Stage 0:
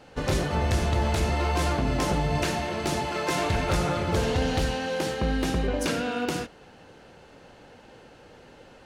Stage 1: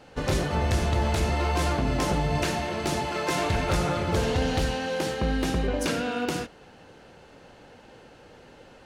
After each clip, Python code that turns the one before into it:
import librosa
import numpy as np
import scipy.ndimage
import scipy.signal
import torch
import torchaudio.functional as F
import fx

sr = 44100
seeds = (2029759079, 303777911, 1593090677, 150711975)

y = x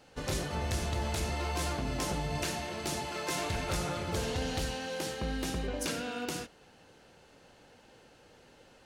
y = fx.high_shelf(x, sr, hz=3900.0, db=9.0)
y = F.gain(torch.from_numpy(y), -9.0).numpy()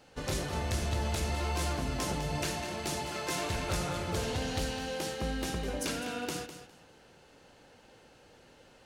y = fx.echo_feedback(x, sr, ms=204, feedback_pct=20, wet_db=-11)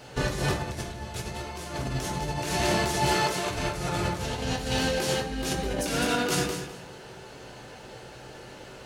y = fx.over_compress(x, sr, threshold_db=-37.0, ratio=-0.5)
y = fx.rev_fdn(y, sr, rt60_s=0.66, lf_ratio=0.95, hf_ratio=0.65, size_ms=47.0, drr_db=1.0)
y = F.gain(torch.from_numpy(y), 7.5).numpy()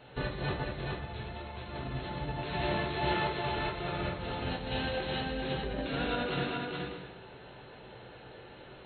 y = fx.brickwall_lowpass(x, sr, high_hz=4300.0)
y = y + 10.0 ** (-3.5 / 20.0) * np.pad(y, (int(421 * sr / 1000.0), 0))[:len(y)]
y = F.gain(torch.from_numpy(y), -7.0).numpy()